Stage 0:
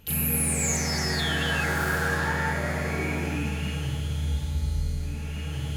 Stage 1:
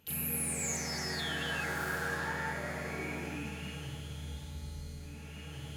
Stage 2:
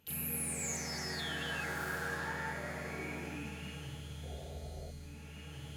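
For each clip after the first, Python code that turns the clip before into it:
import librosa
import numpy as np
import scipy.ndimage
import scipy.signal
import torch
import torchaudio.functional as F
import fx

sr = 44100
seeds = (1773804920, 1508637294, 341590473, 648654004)

y1 = fx.highpass(x, sr, hz=160.0, slope=6)
y1 = y1 * 10.0 ** (-8.5 / 20.0)
y2 = fx.spec_paint(y1, sr, seeds[0], shape='noise', start_s=4.23, length_s=0.68, low_hz=370.0, high_hz=750.0, level_db=-49.0)
y2 = y2 * 10.0 ** (-3.0 / 20.0)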